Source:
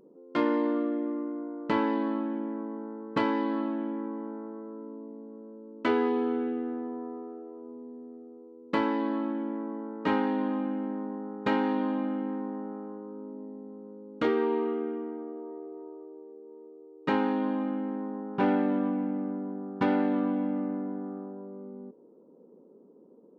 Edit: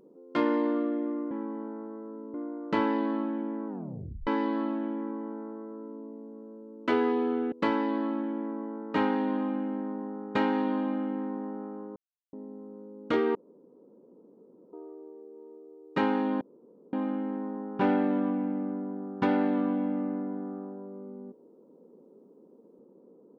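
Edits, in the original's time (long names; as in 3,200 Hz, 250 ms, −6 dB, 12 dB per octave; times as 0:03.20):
0:02.65: tape stop 0.59 s
0:03.94–0:04.97: duplicate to 0:01.31
0:06.49–0:08.63: remove
0:13.07–0:13.44: silence
0:14.46–0:15.84: fill with room tone
0:17.52: splice in room tone 0.52 s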